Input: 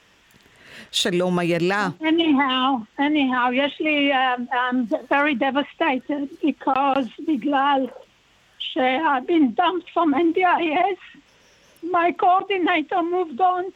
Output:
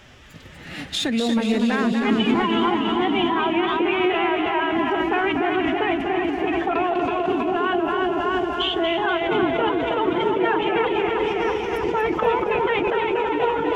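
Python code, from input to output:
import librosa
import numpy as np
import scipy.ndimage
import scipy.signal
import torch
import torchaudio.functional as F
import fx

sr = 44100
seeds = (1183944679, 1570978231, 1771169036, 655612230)

p1 = fx.low_shelf(x, sr, hz=200.0, db=11.5)
p2 = p1 + fx.echo_feedback(p1, sr, ms=323, feedback_pct=55, wet_db=-8.5, dry=0)
p3 = fx.pitch_keep_formants(p2, sr, semitones=4.5)
p4 = fx.over_compress(p3, sr, threshold_db=-29.0, ratio=-1.0)
p5 = p3 + (p4 * 10.0 ** (3.0 / 20.0))
p6 = fx.high_shelf(p5, sr, hz=7500.0, db=-6.0)
p7 = fx.echo_warbled(p6, sr, ms=240, feedback_pct=55, rate_hz=2.8, cents=98, wet_db=-6.5)
y = p7 * 10.0 ** (-6.5 / 20.0)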